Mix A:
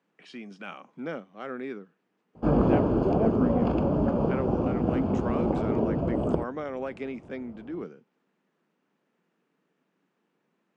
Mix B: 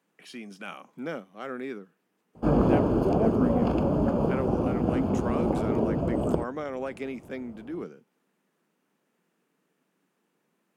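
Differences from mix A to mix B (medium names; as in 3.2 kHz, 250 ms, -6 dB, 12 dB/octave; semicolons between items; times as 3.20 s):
speech: remove brick-wall FIR low-pass 9.8 kHz; master: remove distance through air 110 m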